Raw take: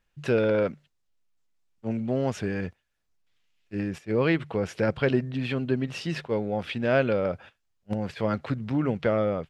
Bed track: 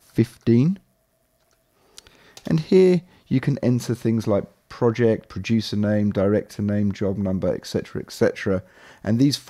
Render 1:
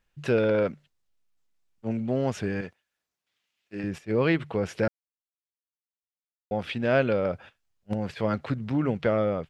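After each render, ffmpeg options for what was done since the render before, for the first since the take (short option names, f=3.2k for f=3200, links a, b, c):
-filter_complex "[0:a]asettb=1/sr,asplit=3[a][b][c];[a]atrim=end=2.614[d];[b]atrim=start=2.61:end=3.84,asetpts=PTS-STARTPTS,afade=t=in:d=0.004:c=qsin,afade=t=out:st=1.226:d=0.004:c=qsin,highpass=f=350:p=1[e];[c]atrim=start=3.836[f];[d][e]acrossfade=d=0.004:c1=hsin:c2=qsin[g];[g][f]acrossfade=d=0.004:c1=qsin:c2=hsin,asplit=3[h][i][j];[h]atrim=end=4.88,asetpts=PTS-STARTPTS,afade=t=out:st=4.876:d=0.004:c=hsin[k];[i]atrim=start=4.88:end=6.51,asetpts=PTS-STARTPTS,volume=0[l];[j]atrim=start=6.51,asetpts=PTS-STARTPTS,afade=t=in:d=0.004:c=hsin[m];[k][l][m]concat=n=3:v=0:a=1"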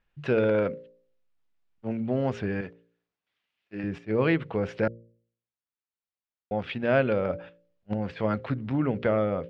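-af "lowpass=3.3k,bandreject=f=57.68:t=h:w=4,bandreject=f=115.36:t=h:w=4,bandreject=f=173.04:t=h:w=4,bandreject=f=230.72:t=h:w=4,bandreject=f=288.4:t=h:w=4,bandreject=f=346.08:t=h:w=4,bandreject=f=403.76:t=h:w=4,bandreject=f=461.44:t=h:w=4,bandreject=f=519.12:t=h:w=4,bandreject=f=576.8:t=h:w=4"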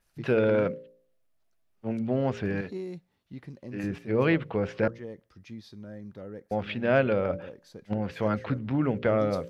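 -filter_complex "[1:a]volume=-22dB[a];[0:a][a]amix=inputs=2:normalize=0"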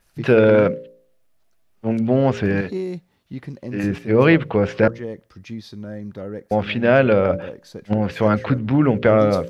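-af "volume=10dB,alimiter=limit=-2dB:level=0:latency=1"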